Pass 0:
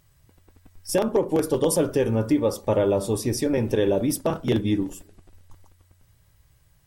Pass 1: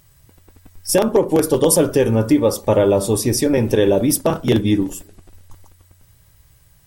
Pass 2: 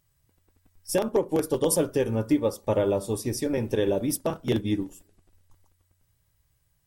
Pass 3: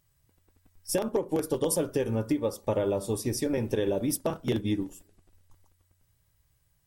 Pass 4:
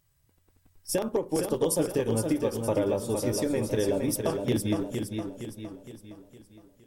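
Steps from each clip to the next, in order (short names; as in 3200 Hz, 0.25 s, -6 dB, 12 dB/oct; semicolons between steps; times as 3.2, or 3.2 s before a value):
high shelf 6200 Hz +5.5 dB; gain +6.5 dB
upward expander 1.5:1, over -29 dBFS; gain -7.5 dB
compressor, threshold -23 dBFS, peak gain reduction 6.5 dB
warbling echo 0.463 s, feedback 47%, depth 56 cents, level -5.5 dB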